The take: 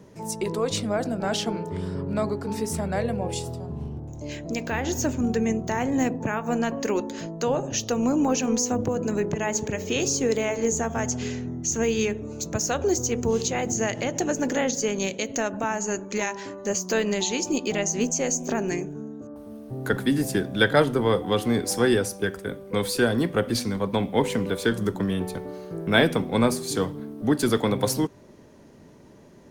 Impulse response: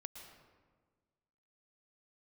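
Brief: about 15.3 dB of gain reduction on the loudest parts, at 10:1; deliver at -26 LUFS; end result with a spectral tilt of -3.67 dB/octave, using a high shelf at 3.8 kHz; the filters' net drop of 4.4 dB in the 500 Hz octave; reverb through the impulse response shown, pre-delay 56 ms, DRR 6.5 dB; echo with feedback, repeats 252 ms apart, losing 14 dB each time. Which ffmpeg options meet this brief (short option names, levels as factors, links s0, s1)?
-filter_complex "[0:a]equalizer=f=500:t=o:g=-5.5,highshelf=f=3800:g=6.5,acompressor=threshold=0.0316:ratio=10,aecho=1:1:252|504:0.2|0.0399,asplit=2[s0][s1];[1:a]atrim=start_sample=2205,adelay=56[s2];[s1][s2]afir=irnorm=-1:irlink=0,volume=0.794[s3];[s0][s3]amix=inputs=2:normalize=0,volume=2.24"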